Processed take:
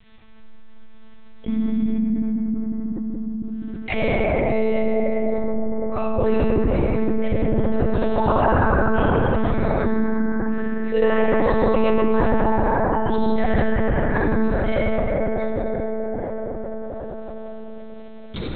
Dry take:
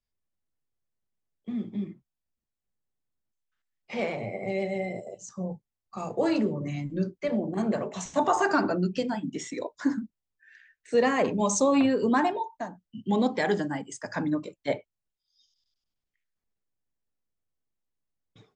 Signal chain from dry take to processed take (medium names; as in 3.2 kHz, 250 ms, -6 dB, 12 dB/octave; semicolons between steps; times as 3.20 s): reverberation RT60 3.4 s, pre-delay 43 ms, DRR -6 dB; monotone LPC vocoder at 8 kHz 220 Hz; level flattener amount 70%; trim -3.5 dB